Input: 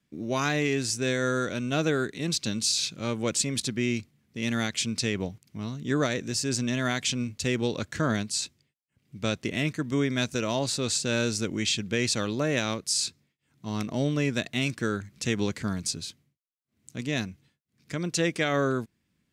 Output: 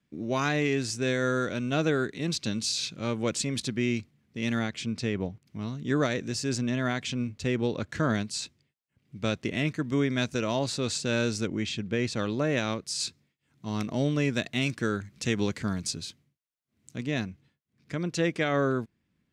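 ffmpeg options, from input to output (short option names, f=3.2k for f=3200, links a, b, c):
-af "asetnsamples=n=441:p=0,asendcmd='4.59 lowpass f 1600;5.46 lowpass f 4100;6.58 lowpass f 2000;7.89 lowpass f 4100;11.47 lowpass f 1600;12.19 lowpass f 3100;13 lowpass f 7100;16.98 lowpass f 2700',lowpass=f=4.2k:p=1"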